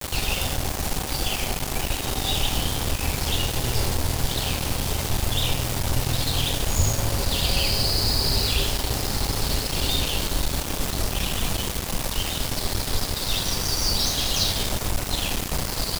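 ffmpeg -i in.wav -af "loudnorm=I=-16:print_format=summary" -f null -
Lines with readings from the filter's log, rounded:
Input Integrated:    -24.2 LUFS
Input True Peak:      -8.4 dBTP
Input LRA:             2.6 LU
Input Threshold:     -34.2 LUFS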